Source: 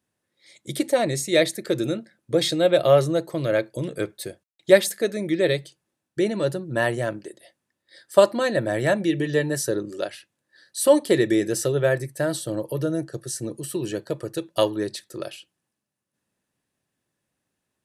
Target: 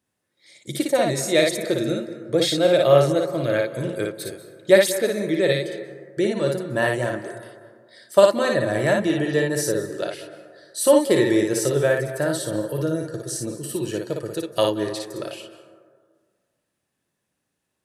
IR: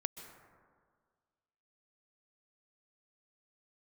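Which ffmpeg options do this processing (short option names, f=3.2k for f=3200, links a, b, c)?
-filter_complex "[0:a]asplit=2[a][b];[1:a]atrim=start_sample=2205,lowshelf=f=230:g=-7,adelay=57[c];[b][c]afir=irnorm=-1:irlink=0,volume=-1.5dB[d];[a][d]amix=inputs=2:normalize=0"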